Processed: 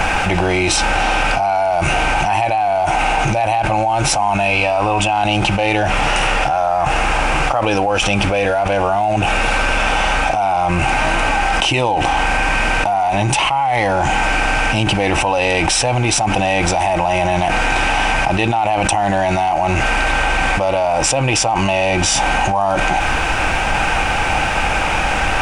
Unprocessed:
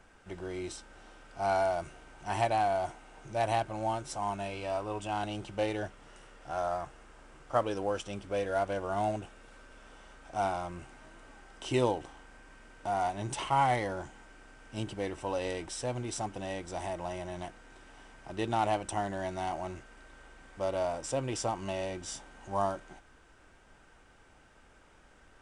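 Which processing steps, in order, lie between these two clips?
thirty-one-band graphic EQ 250 Hz −5 dB, 400 Hz −8 dB, 800 Hz +10 dB, 2,500 Hz +12 dB, 8,000 Hz −4 dB
envelope flattener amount 100%
level +1 dB

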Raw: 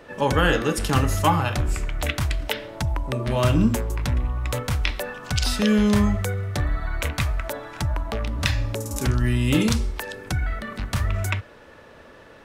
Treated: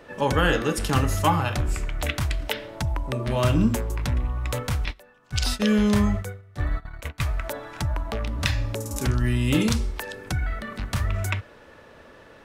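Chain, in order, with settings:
0:04.85–0:07.24: noise gate −23 dBFS, range −20 dB
level −1.5 dB

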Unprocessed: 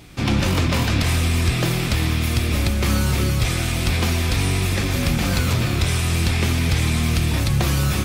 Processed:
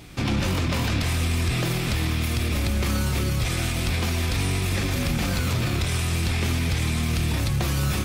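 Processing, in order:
brickwall limiter −16 dBFS, peak gain reduction 6.5 dB

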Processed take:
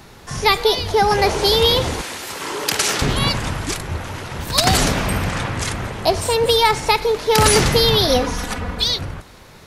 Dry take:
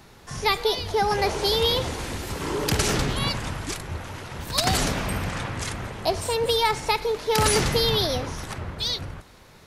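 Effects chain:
0:02.01–0:03.02: high-pass filter 880 Hz 6 dB per octave
0:08.07–0:08.84: comb filter 4.1 ms, depth 89%
level +7 dB

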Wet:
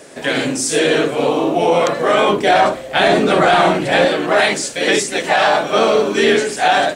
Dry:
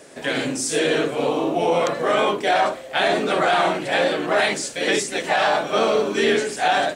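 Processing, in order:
0:02.29–0:04.05: low-shelf EQ 240 Hz +9 dB
level +5.5 dB

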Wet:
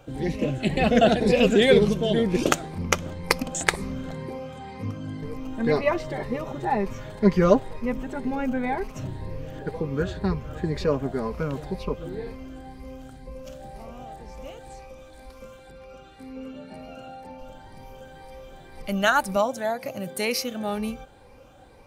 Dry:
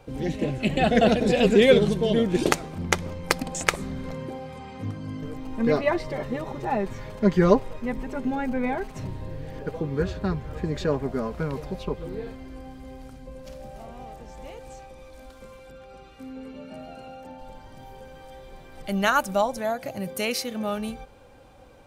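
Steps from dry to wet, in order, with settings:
rippled gain that drifts along the octave scale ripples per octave 0.87, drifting +2 Hz, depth 7 dB
0:19.36–0:20.35: high-pass filter 110 Hz

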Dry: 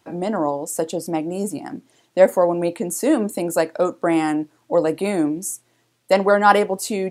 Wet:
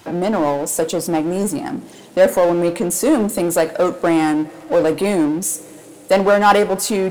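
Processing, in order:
coupled-rooms reverb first 0.33 s, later 4.1 s, from −22 dB, DRR 16.5 dB
power curve on the samples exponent 0.7
level −1 dB

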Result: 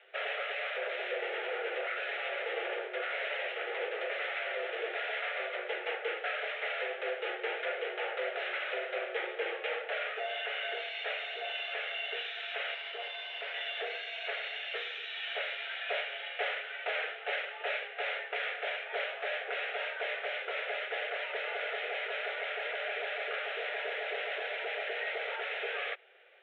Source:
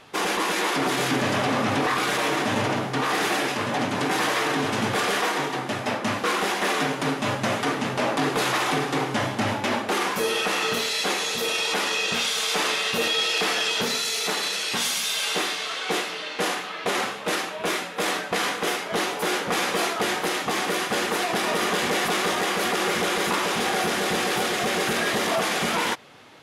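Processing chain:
phaser with its sweep stopped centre 1,900 Hz, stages 4
speech leveller 0.5 s
0:12.74–0:13.54: tube saturation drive 22 dB, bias 0.6
single-sideband voice off tune +240 Hz 160–3,400 Hz
level −7.5 dB

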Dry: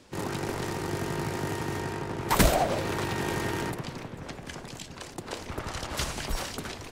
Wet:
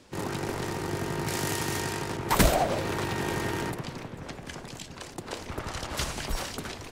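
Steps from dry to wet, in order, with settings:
0:01.27–0:02.17: high-shelf EQ 2,600 Hz +11.5 dB

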